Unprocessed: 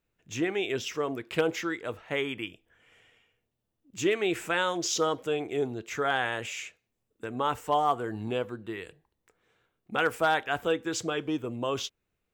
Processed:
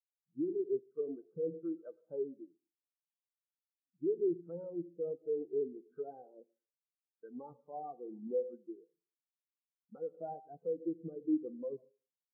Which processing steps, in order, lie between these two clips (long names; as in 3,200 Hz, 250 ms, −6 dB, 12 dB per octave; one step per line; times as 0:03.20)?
treble cut that deepens with the level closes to 490 Hz, closed at −25.5 dBFS
tuned comb filter 170 Hz, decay 0.3 s, harmonics odd, mix 70%
on a send at −10 dB: convolution reverb RT60 0.95 s, pre-delay 67 ms
on the sum: brick-wall band-pass 120–1,600 Hz
brickwall limiter −34 dBFS, peak gain reduction 8.5 dB
every bin expanded away from the loudest bin 2.5 to 1
level +10.5 dB